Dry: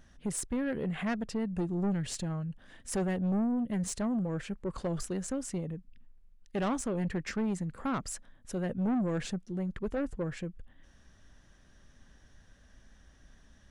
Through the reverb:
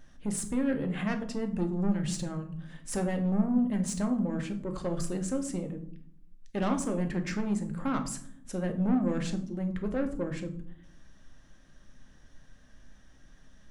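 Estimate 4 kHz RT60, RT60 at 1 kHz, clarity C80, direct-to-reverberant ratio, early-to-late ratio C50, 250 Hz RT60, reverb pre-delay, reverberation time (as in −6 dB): 0.35 s, 0.55 s, 15.5 dB, 5.0 dB, 11.5 dB, 1.1 s, 3 ms, 0.60 s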